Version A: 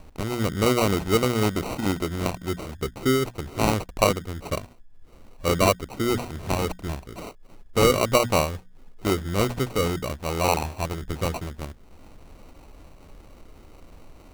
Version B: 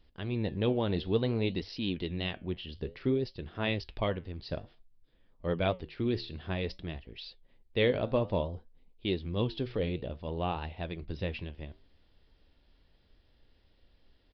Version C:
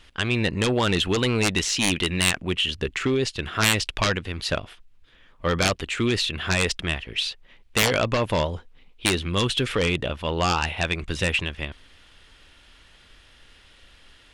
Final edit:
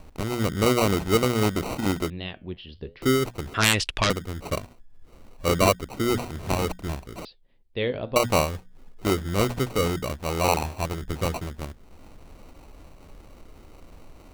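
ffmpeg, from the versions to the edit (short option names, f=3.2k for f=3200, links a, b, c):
-filter_complex "[1:a]asplit=2[a][b];[0:a]asplit=4[c][d][e][f];[c]atrim=end=2.102[g];[a]atrim=start=2.098:end=3.022[h];[d]atrim=start=3.018:end=3.542[i];[2:a]atrim=start=3.538:end=4.102[j];[e]atrim=start=4.098:end=7.252[k];[b]atrim=start=7.248:end=8.162[l];[f]atrim=start=8.158[m];[g][h]acrossfade=d=0.004:c1=hsin:c2=hsin[n];[n][i]acrossfade=d=0.004:c1=hsin:c2=hsin[o];[o][j]acrossfade=d=0.004:c1=hsin:c2=hsin[p];[p][k]acrossfade=d=0.004:c1=hsin:c2=hsin[q];[q][l]acrossfade=d=0.004:c1=hsin:c2=hsin[r];[r][m]acrossfade=d=0.004:c1=hsin:c2=hsin"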